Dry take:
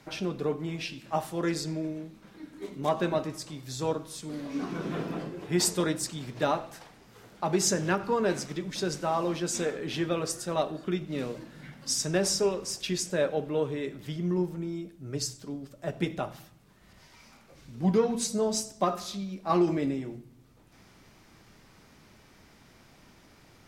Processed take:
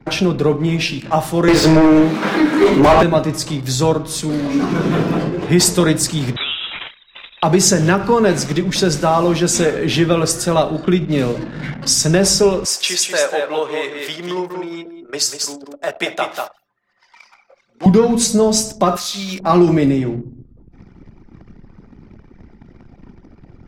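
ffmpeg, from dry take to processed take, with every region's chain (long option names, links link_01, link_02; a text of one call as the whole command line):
ffmpeg -i in.wav -filter_complex "[0:a]asettb=1/sr,asplit=3[link_01][link_02][link_03];[link_01]atrim=end=1.484[link_04];[link_02]atrim=start=1.48:end=3.03,asetpts=PTS-STARTPTS,afade=type=in:duration=0.004:curve=qsin,afade=type=out:start_time=1.546:duration=0.004:curve=qsin,highpass=190,asplit=2[link_05][link_06];[link_06]highpass=frequency=720:poles=1,volume=33dB,asoftclip=type=tanh:threshold=-12.5dB[link_07];[link_05][link_07]amix=inputs=2:normalize=0,lowpass=frequency=1400:poles=1,volume=-6dB,asplit=2[link_08][link_09];[link_09]adelay=20,volume=-11dB[link_10];[link_08][link_10]amix=inputs=2:normalize=0,atrim=end_sample=68355[link_11];[link_03]atrim=start=3.026[link_12];[link_04][link_11]acrossfade=duration=0.004:curve1=hsin:curve2=qsin[link_13];[link_13][link_12]acrossfade=duration=0.004:curve1=qsin:curve2=hsin,asettb=1/sr,asplit=3[link_14][link_15][link_16];[link_14]atrim=end=6.364[link_17];[link_15]atrim=start=6.36:end=7.43,asetpts=PTS-STARTPTS,afade=type=in:duration=0.004:curve=qsin,afade=type=out:start_time=1.066:duration=0.004:curve=qsin,acompressor=threshold=-36dB:ratio=6:attack=3.2:release=140:knee=1:detection=peak,tiltshelf=frequency=900:gain=-6,lowpass=frequency=3400:width_type=q:width=0.5098,lowpass=frequency=3400:width_type=q:width=0.6013,lowpass=frequency=3400:width_type=q:width=0.9,lowpass=frequency=3400:width_type=q:width=2.563,afreqshift=-4000[link_18];[link_16]atrim=start=7.426[link_19];[link_17][link_18]acrossfade=duration=0.004:curve1=hsin:curve2=qsin[link_20];[link_20][link_19]acrossfade=duration=0.004:curve1=qsin:curve2=hsin,asettb=1/sr,asplit=3[link_21][link_22][link_23];[link_21]atrim=end=12.654[link_24];[link_22]atrim=start=12.65:end=17.86,asetpts=PTS-STARTPTS,afade=type=in:duration=0.004:curve=qsin,afade=type=out:start_time=5.206:duration=0.004:curve=qsin,highpass=700,aecho=1:1:191:0.501,atrim=end_sample=229761[link_25];[link_23]atrim=start=17.856[link_26];[link_24][link_25]acrossfade=duration=0.004:curve1=hsin:curve2=qsin[link_27];[link_27][link_26]acrossfade=duration=0.004:curve1=qsin:curve2=hsin,asettb=1/sr,asplit=3[link_28][link_29][link_30];[link_28]atrim=end=18.964[link_31];[link_29]atrim=start=18.96:end=19.4,asetpts=PTS-STARTPTS,afade=type=in:duration=0.004:curve=qsin,afade=type=out:start_time=0.436:duration=0.004:curve=qsin,tiltshelf=frequency=890:gain=-9.5,acompressor=threshold=-40dB:ratio=3:attack=3.2:release=140:knee=1:detection=peak,acrusher=bits=7:mode=log:mix=0:aa=0.000001[link_32];[link_30]atrim=start=19.396[link_33];[link_31][link_32]acrossfade=duration=0.004:curve1=hsin:curve2=qsin[link_34];[link_34][link_33]acrossfade=duration=0.004:curve1=qsin:curve2=hsin,anlmdn=0.00251,acrossover=split=140[link_35][link_36];[link_36]acompressor=threshold=-45dB:ratio=1.5[link_37];[link_35][link_37]amix=inputs=2:normalize=0,alimiter=level_in=22dB:limit=-1dB:release=50:level=0:latency=1,volume=-1dB" out.wav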